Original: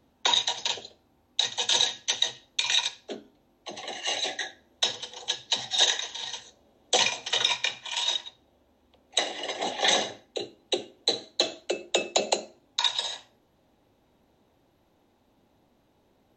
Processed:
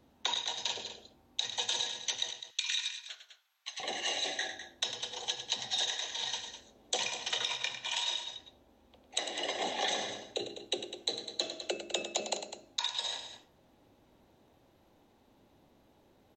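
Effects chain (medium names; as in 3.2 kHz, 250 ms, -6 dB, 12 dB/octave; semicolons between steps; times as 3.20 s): 2.30–3.80 s: high-pass 1.3 kHz 24 dB/octave; compression 6:1, threshold -31 dBFS, peak gain reduction 13.5 dB; loudspeakers at several distances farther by 35 m -10 dB, 70 m -11 dB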